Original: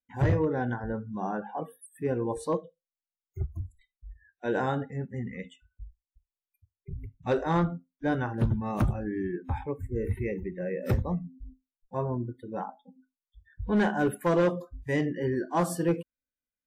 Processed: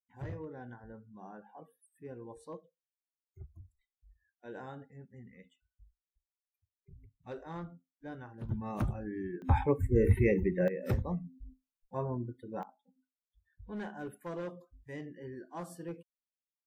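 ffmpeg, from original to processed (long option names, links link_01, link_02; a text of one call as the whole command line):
ffmpeg -i in.wav -af "asetnsamples=nb_out_samples=441:pad=0,asendcmd='8.49 volume volume -7dB;9.42 volume volume 5dB;10.68 volume volume -5dB;12.63 volume volume -16dB',volume=-17dB" out.wav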